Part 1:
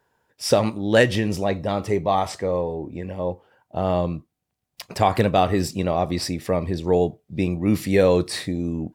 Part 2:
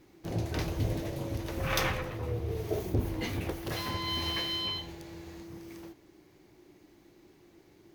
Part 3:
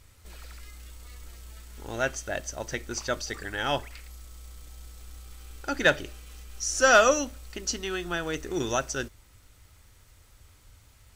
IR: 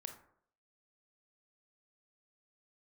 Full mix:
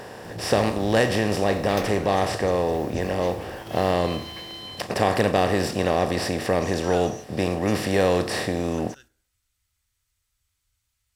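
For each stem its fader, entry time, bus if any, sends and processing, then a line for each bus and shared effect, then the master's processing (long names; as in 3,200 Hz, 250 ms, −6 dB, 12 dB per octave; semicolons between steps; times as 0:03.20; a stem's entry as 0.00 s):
−7.5 dB, 0.00 s, send −23 dB, compressor on every frequency bin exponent 0.4
−5.0 dB, 0.00 s, no send, no processing
−10.5 dB, 0.00 s, send −6.5 dB, guitar amp tone stack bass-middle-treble 5-5-5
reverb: on, RT60 0.65 s, pre-delay 22 ms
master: no processing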